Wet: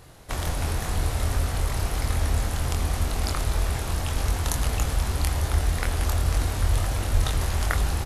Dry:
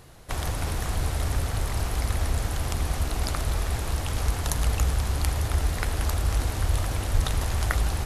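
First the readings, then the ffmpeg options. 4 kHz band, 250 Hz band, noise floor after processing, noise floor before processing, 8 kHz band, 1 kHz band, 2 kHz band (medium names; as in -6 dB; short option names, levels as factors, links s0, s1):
+1.5 dB, +1.5 dB, -30 dBFS, -32 dBFS, +1.5 dB, +1.5 dB, +1.5 dB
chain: -filter_complex "[0:a]asplit=2[s0][s1];[s1]adelay=24,volume=0.596[s2];[s0][s2]amix=inputs=2:normalize=0"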